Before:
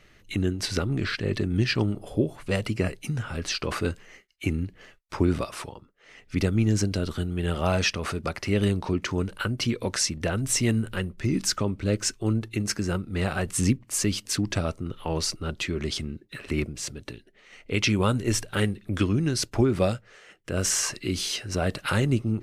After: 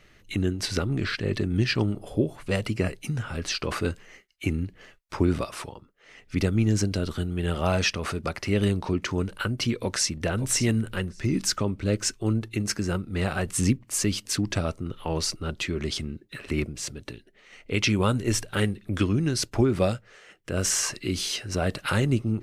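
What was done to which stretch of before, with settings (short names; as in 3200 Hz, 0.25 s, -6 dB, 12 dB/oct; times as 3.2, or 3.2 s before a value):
9.73–10.23 echo throw 0.57 s, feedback 15%, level -12.5 dB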